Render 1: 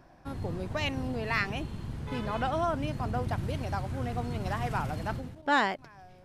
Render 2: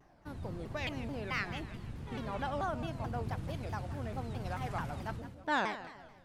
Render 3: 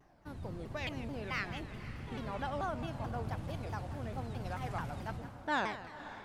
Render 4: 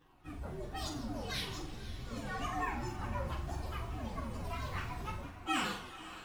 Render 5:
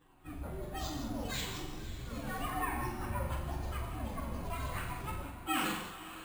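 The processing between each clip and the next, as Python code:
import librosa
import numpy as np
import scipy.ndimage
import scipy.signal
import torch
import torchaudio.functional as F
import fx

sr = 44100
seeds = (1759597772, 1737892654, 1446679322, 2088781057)

y1 = fx.echo_feedback(x, sr, ms=160, feedback_pct=41, wet_db=-13)
y1 = fx.vibrato_shape(y1, sr, shape='saw_down', rate_hz=4.6, depth_cents=250.0)
y1 = F.gain(torch.from_numpy(y1), -6.5).numpy()
y2 = fx.echo_diffused(y1, sr, ms=522, feedback_pct=48, wet_db=-14)
y2 = F.gain(torch.from_numpy(y2), -1.5).numpy()
y3 = fx.partial_stretch(y2, sr, pct=129)
y3 = fx.room_flutter(y3, sr, wall_m=7.5, rt60_s=0.4)
y3 = F.gain(torch.from_numpy(y3), 3.0).numpy()
y4 = fx.rev_gated(y3, sr, seeds[0], gate_ms=230, shape='flat', drr_db=5.0)
y4 = np.repeat(scipy.signal.resample_poly(y4, 1, 4), 4)[:len(y4)]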